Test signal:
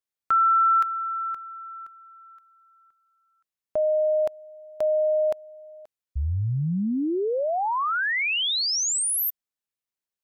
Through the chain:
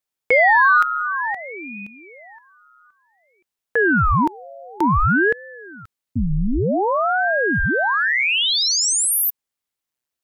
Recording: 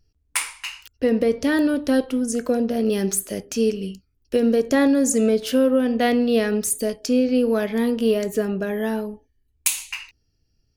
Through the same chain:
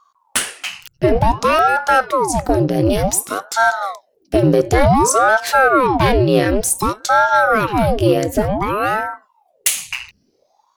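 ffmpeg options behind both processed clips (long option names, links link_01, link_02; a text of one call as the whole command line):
ffmpeg -i in.wav -af "acontrast=83,aeval=exprs='val(0)*sin(2*PI*600*n/s+600*0.9/0.55*sin(2*PI*0.55*n/s))':channel_layout=same,volume=2dB" out.wav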